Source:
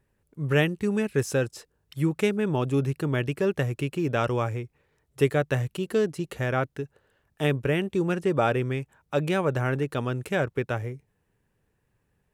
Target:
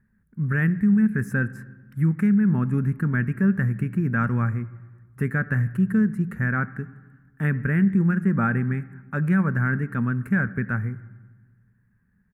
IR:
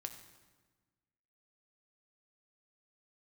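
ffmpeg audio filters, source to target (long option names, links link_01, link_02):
-filter_complex "[0:a]firequalizer=gain_entry='entry(140,0);entry(210,13);entry(300,-9);entry(620,-17);entry(1600,7);entry(3100,-23);entry(11000,-6)':delay=0.05:min_phase=1,alimiter=limit=-16.5dB:level=0:latency=1:release=35,asplit=2[link_01][link_02];[1:a]atrim=start_sample=2205,lowpass=2300[link_03];[link_02][link_03]afir=irnorm=-1:irlink=0,volume=-1.5dB[link_04];[link_01][link_04]amix=inputs=2:normalize=0"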